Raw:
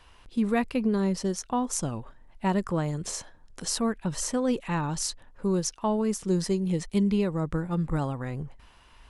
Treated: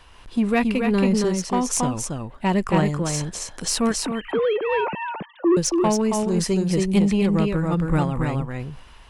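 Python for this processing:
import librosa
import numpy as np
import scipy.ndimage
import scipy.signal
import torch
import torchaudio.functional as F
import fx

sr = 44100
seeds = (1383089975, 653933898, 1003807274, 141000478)

p1 = fx.sine_speech(x, sr, at=(4.04, 5.57))
p2 = p1 + fx.echo_single(p1, sr, ms=275, db=-3.5, dry=0)
p3 = 10.0 ** (-17.5 / 20.0) * np.tanh(p2 / 10.0 ** (-17.5 / 20.0))
p4 = fx.dynamic_eq(p3, sr, hz=2500.0, q=2.5, threshold_db=-54.0, ratio=4.0, max_db=6)
p5 = fx.am_noise(p4, sr, seeds[0], hz=5.7, depth_pct=55)
y = p5 * 10.0 ** (8.5 / 20.0)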